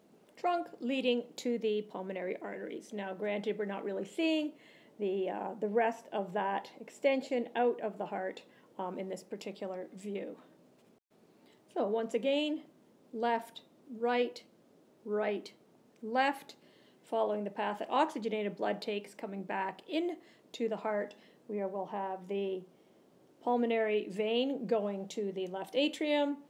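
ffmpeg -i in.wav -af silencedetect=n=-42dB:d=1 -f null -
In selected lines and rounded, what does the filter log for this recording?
silence_start: 10.34
silence_end: 11.76 | silence_duration: 1.42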